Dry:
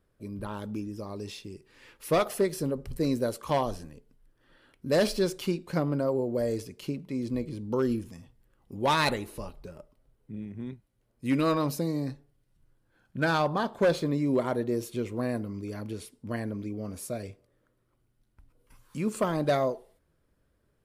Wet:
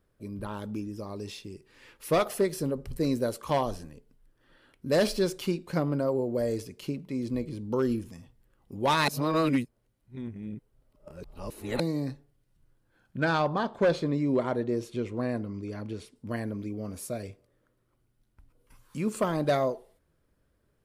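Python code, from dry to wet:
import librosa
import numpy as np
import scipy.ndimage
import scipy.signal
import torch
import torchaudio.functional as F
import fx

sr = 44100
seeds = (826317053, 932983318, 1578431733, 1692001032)

y = fx.air_absorb(x, sr, metres=59.0, at=(13.17, 16.16))
y = fx.edit(y, sr, fx.reverse_span(start_s=9.08, length_s=2.72), tone=tone)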